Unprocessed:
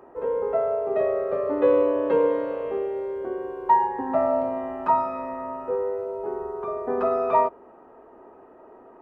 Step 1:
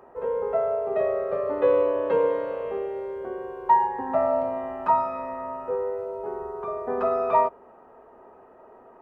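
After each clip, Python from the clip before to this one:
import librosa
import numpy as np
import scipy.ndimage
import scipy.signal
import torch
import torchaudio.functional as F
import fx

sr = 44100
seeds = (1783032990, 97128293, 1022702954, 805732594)

y = fx.peak_eq(x, sr, hz=310.0, db=-8.5, octaves=0.51)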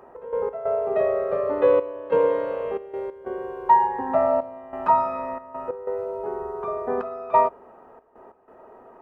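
y = fx.step_gate(x, sr, bpm=92, pattern='x.x.xxxxxxx..xxx', floor_db=-12.0, edge_ms=4.5)
y = y * librosa.db_to_amplitude(2.5)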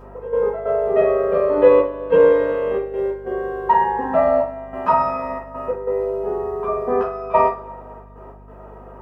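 y = fx.rev_double_slope(x, sr, seeds[0], early_s=0.29, late_s=2.3, knee_db=-27, drr_db=-5.5)
y = fx.add_hum(y, sr, base_hz=50, snr_db=24)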